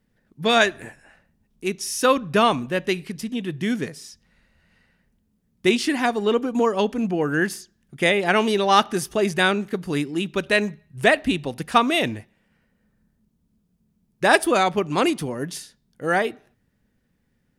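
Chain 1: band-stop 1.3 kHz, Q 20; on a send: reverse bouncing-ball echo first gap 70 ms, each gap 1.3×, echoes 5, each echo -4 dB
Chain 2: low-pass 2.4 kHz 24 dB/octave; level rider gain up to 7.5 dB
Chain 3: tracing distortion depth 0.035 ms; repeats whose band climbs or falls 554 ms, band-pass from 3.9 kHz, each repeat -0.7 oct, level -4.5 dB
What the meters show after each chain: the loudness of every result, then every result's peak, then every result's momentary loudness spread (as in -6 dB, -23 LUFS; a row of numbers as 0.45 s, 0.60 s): -20.0 LUFS, -18.0 LUFS, -22.0 LUFS; -1.5 dBFS, -1.0 dBFS, -2.0 dBFS; 14 LU, 9 LU, 17 LU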